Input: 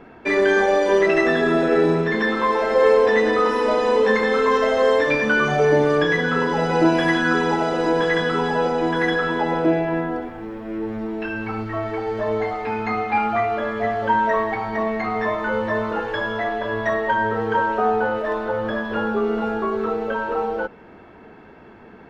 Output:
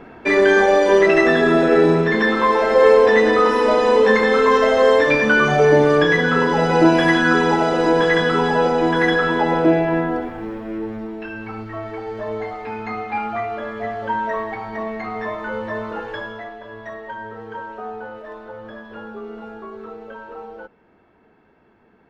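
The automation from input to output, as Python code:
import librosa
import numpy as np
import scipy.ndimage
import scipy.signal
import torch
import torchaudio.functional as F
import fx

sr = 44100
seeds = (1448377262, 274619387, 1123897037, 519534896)

y = fx.gain(x, sr, db=fx.line((10.49, 3.5), (11.21, -4.0), (16.14, -4.0), (16.57, -12.0)))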